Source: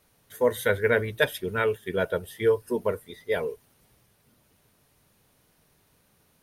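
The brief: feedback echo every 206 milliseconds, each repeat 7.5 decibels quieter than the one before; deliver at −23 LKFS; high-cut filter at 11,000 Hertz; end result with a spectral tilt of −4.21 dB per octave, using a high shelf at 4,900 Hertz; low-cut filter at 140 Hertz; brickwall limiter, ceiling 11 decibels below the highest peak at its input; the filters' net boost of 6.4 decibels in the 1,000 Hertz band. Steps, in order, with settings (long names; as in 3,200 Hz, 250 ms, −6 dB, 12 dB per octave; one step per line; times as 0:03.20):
high-pass filter 140 Hz
low-pass filter 11,000 Hz
parametric band 1,000 Hz +8 dB
high-shelf EQ 4,900 Hz +8.5 dB
brickwall limiter −14 dBFS
repeating echo 206 ms, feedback 42%, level −7.5 dB
level +4 dB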